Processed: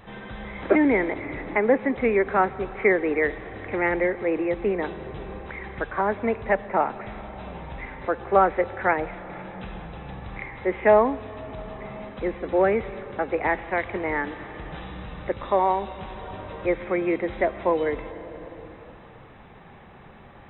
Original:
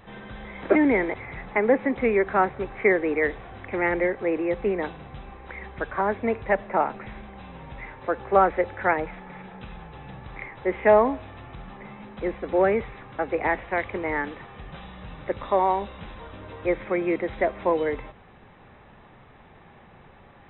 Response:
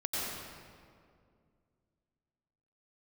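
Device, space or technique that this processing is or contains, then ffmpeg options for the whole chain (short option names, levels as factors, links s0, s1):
ducked reverb: -filter_complex "[0:a]asplit=3[s0][s1][s2];[1:a]atrim=start_sample=2205[s3];[s1][s3]afir=irnorm=-1:irlink=0[s4];[s2]apad=whole_len=903956[s5];[s4][s5]sidechaincompress=threshold=0.0224:ratio=8:attack=11:release=602,volume=0.335[s6];[s0][s6]amix=inputs=2:normalize=0"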